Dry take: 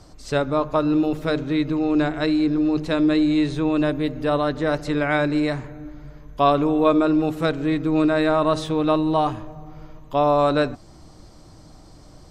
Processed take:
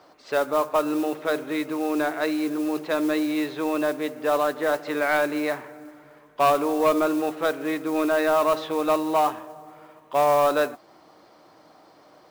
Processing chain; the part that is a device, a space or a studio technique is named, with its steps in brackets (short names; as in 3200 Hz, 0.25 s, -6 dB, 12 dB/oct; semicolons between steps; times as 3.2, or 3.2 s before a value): carbon microphone (BPF 480–2800 Hz; soft clip -14.5 dBFS, distortion -16 dB; modulation noise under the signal 21 dB); gain +2.5 dB